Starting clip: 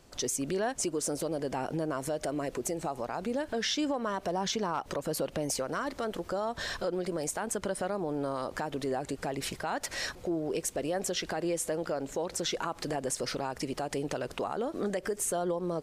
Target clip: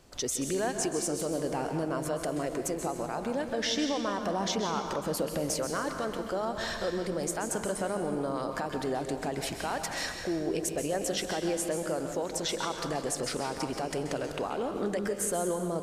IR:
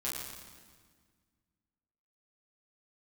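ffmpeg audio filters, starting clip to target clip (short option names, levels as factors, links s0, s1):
-filter_complex "[0:a]asplit=2[s0][s1];[1:a]atrim=start_sample=2205,adelay=129[s2];[s1][s2]afir=irnorm=-1:irlink=0,volume=0.376[s3];[s0][s3]amix=inputs=2:normalize=0"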